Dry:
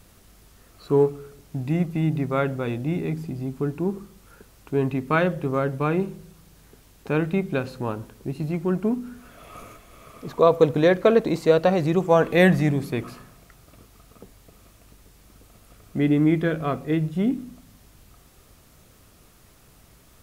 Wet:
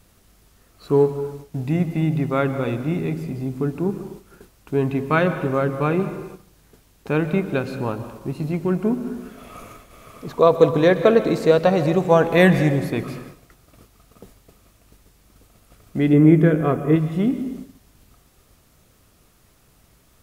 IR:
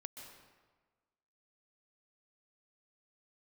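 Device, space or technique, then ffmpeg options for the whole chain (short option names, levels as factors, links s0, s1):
keyed gated reverb: -filter_complex "[0:a]asplit=3[s0][s1][s2];[1:a]atrim=start_sample=2205[s3];[s1][s3]afir=irnorm=-1:irlink=0[s4];[s2]apad=whole_len=892003[s5];[s4][s5]sidechaingate=range=0.0224:threshold=0.00398:ratio=16:detection=peak,volume=1.58[s6];[s0][s6]amix=inputs=2:normalize=0,asettb=1/sr,asplit=3[s7][s8][s9];[s7]atrim=end=16.134[s10];[s8]atrim=start=16.13:end=16.96,asetpts=PTS-STARTPTS,afade=t=in:d=0.004:c=qsin,afade=t=out:st=0.826:d=0.004:c=qsin,equalizer=f=160:t=o:w=0.67:g=6,equalizer=f=400:t=o:w=0.67:g=7,equalizer=f=4000:t=o:w=0.67:g=-11[s11];[s9]atrim=start=16.956[s12];[s10][s11]acrossfade=d=0.004:c1=hsin:c2=qsin[s13];[s13][s12]acrossfade=d=0.004:c1=qsin:c2=hsin,volume=0.708"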